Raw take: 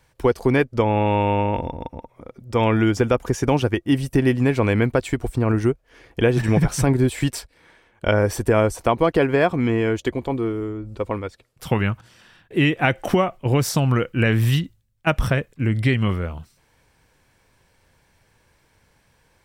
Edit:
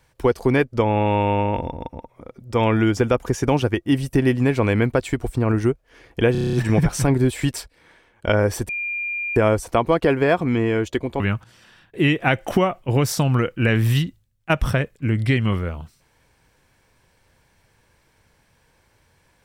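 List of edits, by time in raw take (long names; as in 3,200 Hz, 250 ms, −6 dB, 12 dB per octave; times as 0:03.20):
0:06.32: stutter 0.03 s, 8 plays
0:08.48: insert tone 2,400 Hz −23.5 dBFS 0.67 s
0:10.32–0:11.77: remove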